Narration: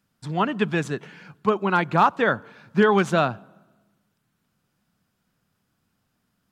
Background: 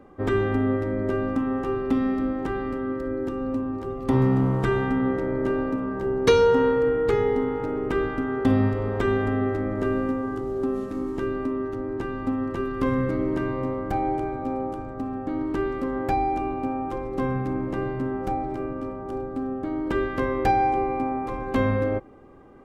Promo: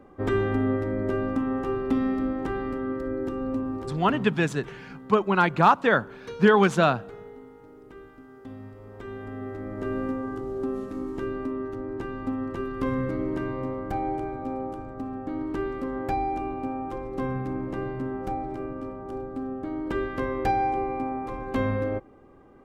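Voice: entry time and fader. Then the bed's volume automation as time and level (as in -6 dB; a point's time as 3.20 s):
3.65 s, 0.0 dB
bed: 3.82 s -1.5 dB
4.37 s -21.5 dB
8.62 s -21.5 dB
10.04 s -3.5 dB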